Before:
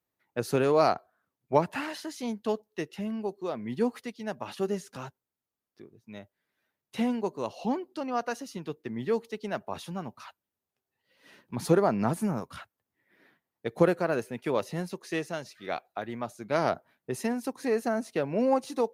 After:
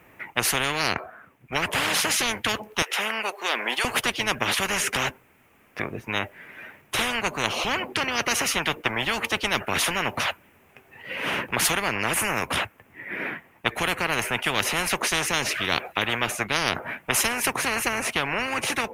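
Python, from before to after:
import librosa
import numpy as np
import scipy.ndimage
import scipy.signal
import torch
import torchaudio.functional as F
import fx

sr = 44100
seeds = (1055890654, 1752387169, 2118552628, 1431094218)

y = fx.highpass(x, sr, hz=710.0, slope=24, at=(2.82, 3.85))
y = fx.high_shelf_res(y, sr, hz=3200.0, db=-9.5, q=3.0)
y = fx.rider(y, sr, range_db=4, speed_s=0.5)
y = fx.spectral_comp(y, sr, ratio=10.0)
y = F.gain(torch.from_numpy(y), 6.5).numpy()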